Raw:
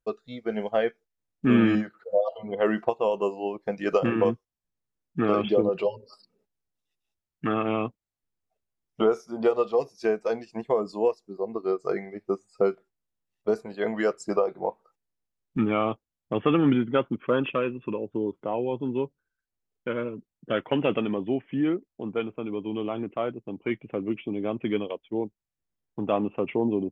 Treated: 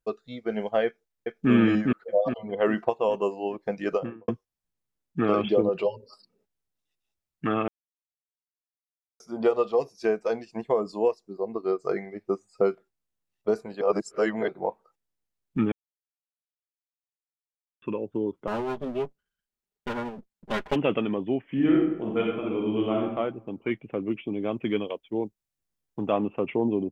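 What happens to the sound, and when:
0.85–1.51 s: echo throw 410 ms, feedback 45%, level -2 dB
3.75–4.28 s: studio fade out
7.68–9.20 s: mute
13.81–14.48 s: reverse
15.72–17.82 s: mute
18.47–20.76 s: comb filter that takes the minimum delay 4.9 ms
21.44–23.02 s: reverb throw, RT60 0.89 s, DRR -2.5 dB
24.41–26.10 s: treble shelf 4.4 kHz +5 dB

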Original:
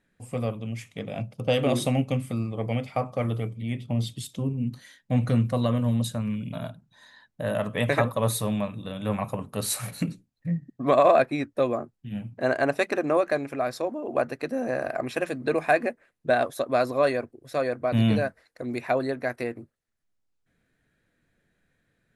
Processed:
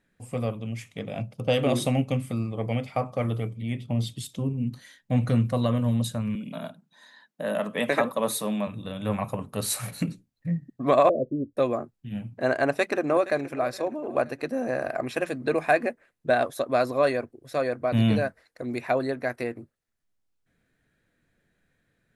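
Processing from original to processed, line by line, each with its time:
6.35–8.67 s: steep high-pass 170 Hz
11.09–11.57 s: steep low-pass 570 Hz 72 dB/octave
12.62–13.49 s: echo throw 470 ms, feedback 40%, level -17 dB

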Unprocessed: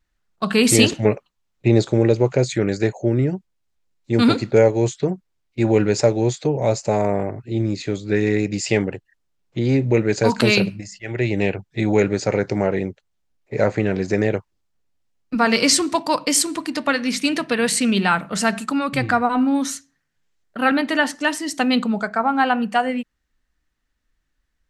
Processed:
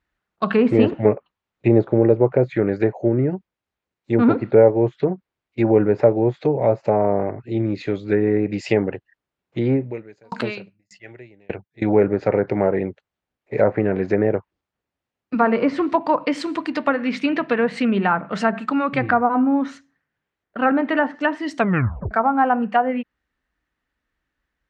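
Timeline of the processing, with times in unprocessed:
9.73–11.82 s: sawtooth tremolo in dB decaying 1.7 Hz, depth 40 dB
19.42–20.71 s: treble shelf 3.6 kHz -7 dB
21.56 s: tape stop 0.55 s
whole clip: high-pass 50 Hz; tone controls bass -5 dB, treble -14 dB; low-pass that closes with the level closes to 1.2 kHz, closed at -16 dBFS; trim +2.5 dB

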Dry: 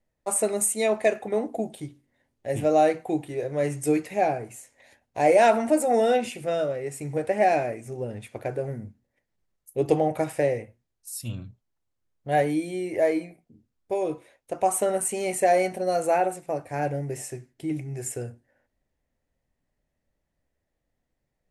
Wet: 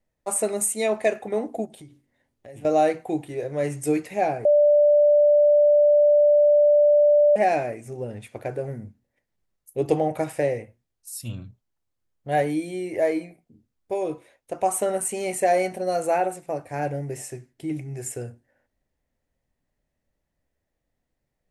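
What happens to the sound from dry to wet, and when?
1.65–2.65 s: compression 4:1, threshold -42 dBFS
4.45–7.36 s: bleep 589 Hz -13 dBFS

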